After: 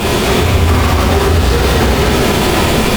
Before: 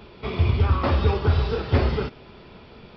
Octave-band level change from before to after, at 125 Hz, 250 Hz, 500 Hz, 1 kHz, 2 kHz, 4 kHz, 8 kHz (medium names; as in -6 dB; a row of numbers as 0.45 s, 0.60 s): +9.5 dB, +16.0 dB, +14.0 dB, +15.5 dB, +18.0 dB, +20.0 dB, no reading